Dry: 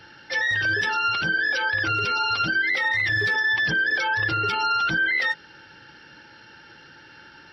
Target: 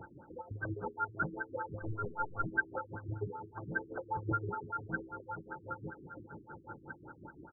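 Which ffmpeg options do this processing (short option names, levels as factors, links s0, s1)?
-filter_complex "[0:a]asplit=2[s0][s1];[s1]aecho=0:1:470|940|1410|1880|2350|2820:0.211|0.125|0.0736|0.0434|0.0256|0.0151[s2];[s0][s2]amix=inputs=2:normalize=0,asettb=1/sr,asplit=3[s3][s4][s5];[s3]atrim=end=1.814[s6];[s4]atrim=start=1.81:end=2.5,asetpts=PTS-STARTPTS,afade=t=in:d=0.004:c=qsin,afade=t=out:st=0.686:d=0.004:c=qsin,aeval=exprs='clip(val(0),-1,0.0447)':c=same[s7];[s5]atrim=start=2.496[s8];[s6][s7]acrossfade=d=0.004:c1=hsin:c2=qsin[s9];[s9][s8]acrossfade=d=0.004:c1=qsin:c2=hsin,alimiter=limit=0.075:level=0:latency=1:release=360,acrossover=split=2500[s10][s11];[s10]aeval=exprs='val(0)*(1-0.7/2+0.7/2*cos(2*PI*5.8*n/s))':c=same[s12];[s11]aeval=exprs='val(0)*(1-0.7/2-0.7/2*cos(2*PI*5.8*n/s))':c=same[s13];[s12][s13]amix=inputs=2:normalize=0,afftfilt=real='re*lt(b*sr/1024,390*pow(1600/390,0.5+0.5*sin(2*PI*5.1*pts/sr)))':imag='im*lt(b*sr/1024,390*pow(1600/390,0.5+0.5*sin(2*PI*5.1*pts/sr)))':win_size=1024:overlap=0.75,volume=1.68"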